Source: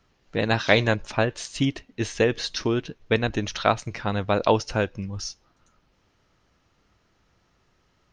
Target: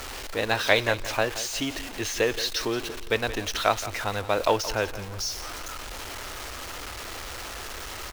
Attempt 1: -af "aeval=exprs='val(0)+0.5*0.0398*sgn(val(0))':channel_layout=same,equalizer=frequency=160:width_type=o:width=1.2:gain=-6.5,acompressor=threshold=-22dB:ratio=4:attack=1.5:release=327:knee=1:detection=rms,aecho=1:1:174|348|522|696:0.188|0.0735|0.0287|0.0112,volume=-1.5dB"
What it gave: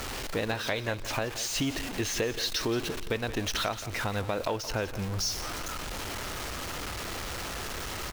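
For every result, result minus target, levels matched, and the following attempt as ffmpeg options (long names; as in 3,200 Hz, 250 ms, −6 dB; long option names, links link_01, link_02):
downward compressor: peak gain reduction +12.5 dB; 125 Hz band +5.5 dB
-af "aeval=exprs='val(0)+0.5*0.0398*sgn(val(0))':channel_layout=same,equalizer=frequency=160:width_type=o:width=1.2:gain=-6.5,aecho=1:1:174|348|522|696:0.188|0.0735|0.0287|0.0112,volume=-1.5dB"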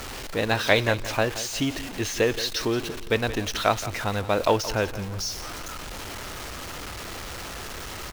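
125 Hz band +5.0 dB
-af "aeval=exprs='val(0)+0.5*0.0398*sgn(val(0))':channel_layout=same,equalizer=frequency=160:width_type=o:width=1.2:gain=-17.5,aecho=1:1:174|348|522|696:0.188|0.0735|0.0287|0.0112,volume=-1.5dB"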